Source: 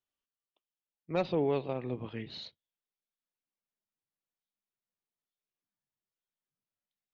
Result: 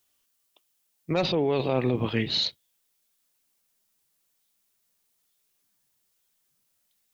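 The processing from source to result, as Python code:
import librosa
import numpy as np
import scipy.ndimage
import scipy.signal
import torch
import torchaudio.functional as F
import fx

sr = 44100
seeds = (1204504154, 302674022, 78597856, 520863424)

p1 = fx.high_shelf(x, sr, hz=4100.0, db=11.5)
p2 = fx.over_compress(p1, sr, threshold_db=-36.0, ratio=-0.5)
p3 = p1 + (p2 * librosa.db_to_amplitude(3.0))
y = p3 * librosa.db_to_amplitude(3.0)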